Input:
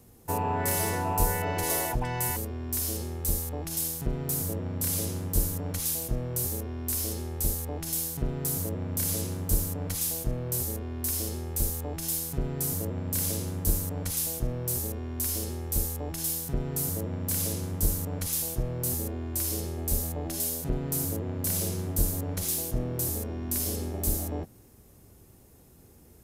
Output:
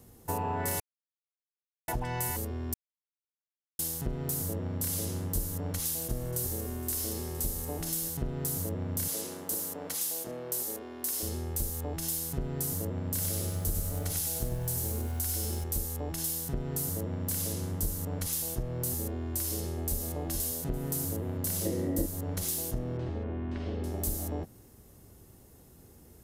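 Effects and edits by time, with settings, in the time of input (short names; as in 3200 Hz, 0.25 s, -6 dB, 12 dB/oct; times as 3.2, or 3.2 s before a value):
0.8–1.88 mute
2.74–3.79 mute
5.86–8.09 echo with dull and thin repeats by turns 0.116 s, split 2300 Hz, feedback 72%, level -11 dB
9.08–11.23 HPF 330 Hz
13.09–15.64 lo-fi delay 96 ms, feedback 35%, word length 8-bit, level -3 dB
19.57–20.08 echo throw 0.43 s, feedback 25%, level -7 dB
21.65–22.06 small resonant body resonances 310/510/1900 Hz, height 18 dB
22.97–23.84 LPF 2900 Hz 24 dB/oct
whole clip: notch 2400 Hz, Q 16; compressor 2.5:1, threshold -30 dBFS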